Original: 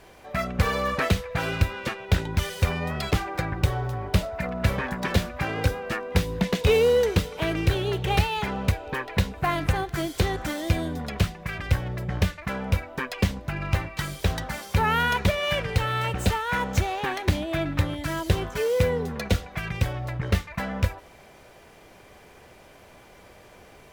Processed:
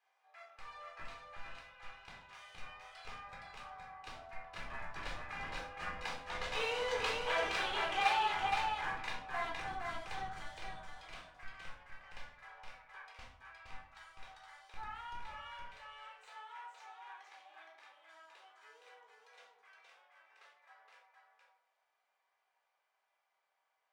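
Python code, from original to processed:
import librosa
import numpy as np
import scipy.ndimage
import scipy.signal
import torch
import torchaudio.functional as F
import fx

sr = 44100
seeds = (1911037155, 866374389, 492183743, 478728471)

p1 = fx.doppler_pass(x, sr, speed_mps=6, closest_m=4.0, pass_at_s=7.5)
p2 = scipy.signal.sosfilt(scipy.signal.butter(4, 760.0, 'highpass', fs=sr, output='sos'), p1)
p3 = fx.high_shelf(p2, sr, hz=3200.0, db=-6.5)
p4 = fx.schmitt(p3, sr, flips_db=-38.5)
p5 = p3 + (p4 * 10.0 ** (-5.0 / 20.0))
p6 = scipy.signal.savgol_filter(p5, 9, 4, mode='constant')
p7 = p6 + 10.0 ** (-4.0 / 20.0) * np.pad(p6, (int(467 * sr / 1000.0), 0))[:len(p6)]
p8 = fx.room_shoebox(p7, sr, seeds[0], volume_m3=610.0, walls='furnished', distance_m=3.9)
y = p8 * 10.0 ** (-7.0 / 20.0)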